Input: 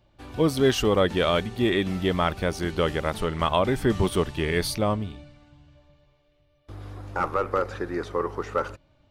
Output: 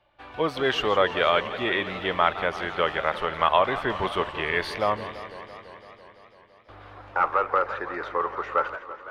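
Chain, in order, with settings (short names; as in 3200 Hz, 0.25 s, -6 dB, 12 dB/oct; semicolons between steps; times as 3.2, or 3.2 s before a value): three-band isolator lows -17 dB, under 560 Hz, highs -23 dB, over 3400 Hz; warbling echo 0.168 s, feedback 77%, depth 203 cents, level -14 dB; gain +5 dB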